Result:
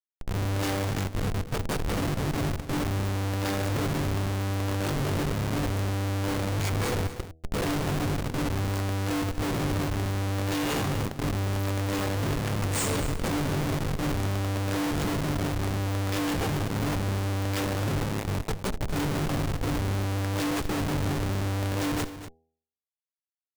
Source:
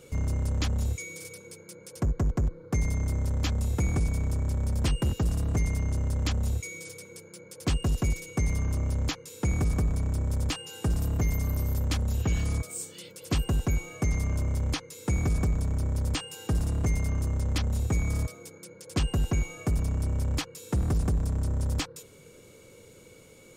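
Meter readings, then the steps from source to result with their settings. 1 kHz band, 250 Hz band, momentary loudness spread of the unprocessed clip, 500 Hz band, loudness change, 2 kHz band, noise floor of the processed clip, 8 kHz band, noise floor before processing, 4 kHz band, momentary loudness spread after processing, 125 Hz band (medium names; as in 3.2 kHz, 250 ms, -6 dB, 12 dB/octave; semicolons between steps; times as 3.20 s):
+9.5 dB, +5.0 dB, 9 LU, +7.5 dB, +0.5 dB, +6.0 dB, under -85 dBFS, +1.5 dB, -52 dBFS, +4.0 dB, 2 LU, 0.0 dB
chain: every event in the spectrogram widened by 60 ms; comb 7.4 ms, depth 84%; peak limiter -18.5 dBFS, peak gain reduction 9 dB; level rider gain up to 15 dB; chord resonator G2 fifth, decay 0.48 s; rotary cabinet horn 1 Hz, later 6.3 Hz, at 11.55 s; word length cut 10-bit, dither none; Schmitt trigger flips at -34 dBFS; de-hum 80.46 Hz, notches 10; on a send: delay 241 ms -13 dB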